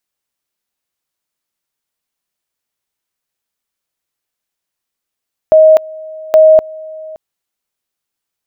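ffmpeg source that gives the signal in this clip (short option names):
-f lavfi -i "aevalsrc='pow(10,(-2-23*gte(mod(t,0.82),0.25))/20)*sin(2*PI*629*t)':d=1.64:s=44100"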